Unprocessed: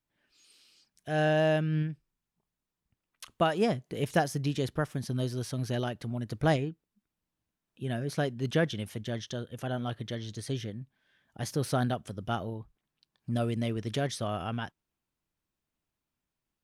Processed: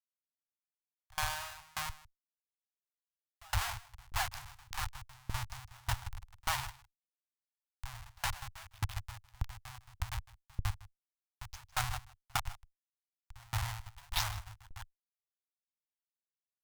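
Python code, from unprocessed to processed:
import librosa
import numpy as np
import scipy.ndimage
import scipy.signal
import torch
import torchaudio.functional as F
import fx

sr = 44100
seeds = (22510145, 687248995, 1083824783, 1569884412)

p1 = fx.spec_delay(x, sr, highs='late', ms=103)
p2 = scipy.signal.sosfilt(scipy.signal.butter(2, 9500.0, 'lowpass', fs=sr, output='sos'), p1)
p3 = fx.high_shelf(p2, sr, hz=3000.0, db=10.5)
p4 = fx.hum_notches(p3, sr, base_hz=50, count=4)
p5 = fx.level_steps(p4, sr, step_db=12)
p6 = p4 + F.gain(torch.from_numpy(p5), -2.0).numpy()
p7 = fx.schmitt(p6, sr, flips_db=-25.5)
p8 = scipy.signal.sosfilt(scipy.signal.ellip(3, 1.0, 40, [100.0, 840.0], 'bandstop', fs=sr, output='sos'), p7)
p9 = fx.cheby_harmonics(p8, sr, harmonics=(5, 7), levels_db=(-33, -29), full_scale_db=-19.0)
p10 = p9 + fx.echo_single(p9, sr, ms=156, db=-11.5, dry=0)
p11 = fx.tremolo_decay(p10, sr, direction='decaying', hz=1.7, depth_db=31)
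y = F.gain(torch.from_numpy(p11), 6.5).numpy()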